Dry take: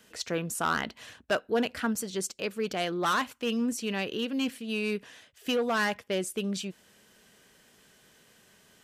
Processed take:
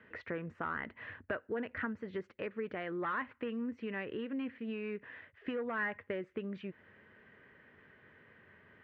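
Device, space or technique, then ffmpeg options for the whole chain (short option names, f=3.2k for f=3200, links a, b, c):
bass amplifier: -af "acompressor=threshold=-36dB:ratio=5,highpass=62,equalizer=f=93:t=q:w=4:g=9,equalizer=f=190:t=q:w=4:g=-4,equalizer=f=730:t=q:w=4:g=-6,equalizer=f=1.9k:t=q:w=4:g=7,lowpass=f=2.1k:w=0.5412,lowpass=f=2.1k:w=1.3066,volume=1dB"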